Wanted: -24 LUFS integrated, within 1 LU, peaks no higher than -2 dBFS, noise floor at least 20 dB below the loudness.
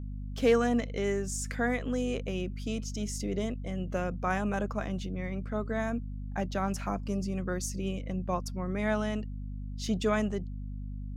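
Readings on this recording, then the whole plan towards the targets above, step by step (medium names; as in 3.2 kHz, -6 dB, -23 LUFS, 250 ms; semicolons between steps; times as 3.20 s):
hum 50 Hz; highest harmonic 250 Hz; hum level -35 dBFS; loudness -32.5 LUFS; peak level -14.5 dBFS; loudness target -24.0 LUFS
-> hum notches 50/100/150/200/250 Hz; trim +8.5 dB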